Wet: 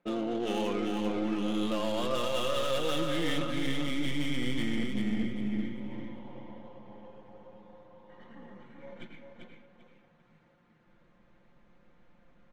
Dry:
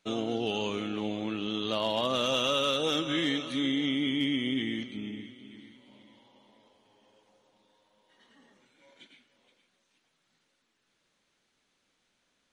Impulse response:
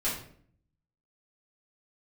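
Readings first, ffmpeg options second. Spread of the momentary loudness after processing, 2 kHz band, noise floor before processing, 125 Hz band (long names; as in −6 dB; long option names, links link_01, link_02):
20 LU, −2.0 dB, −76 dBFS, +3.0 dB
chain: -filter_complex "[0:a]aeval=exprs='if(lt(val(0),0),0.708*val(0),val(0))':channel_layout=same,equalizer=frequency=250:width_type=o:width=1:gain=8,equalizer=frequency=500:width_type=o:width=1:gain=7,equalizer=frequency=1000:width_type=o:width=1:gain=5,equalizer=frequency=2000:width_type=o:width=1:gain=5,equalizer=frequency=8000:width_type=o:width=1:gain=9,adynamicsmooth=sensitivity=4.5:basefreq=1500,aecho=1:1:5.7:0.52,asubboost=boost=7:cutoff=120,areverse,acompressor=threshold=-34dB:ratio=8,areverse,aeval=exprs='0.0501*sin(PI/2*1.41*val(0)/0.0501)':channel_layout=same,asplit=2[link_01][link_02];[link_02]aecho=0:1:393|786|1179|1572:0.596|0.155|0.0403|0.0105[link_03];[link_01][link_03]amix=inputs=2:normalize=0"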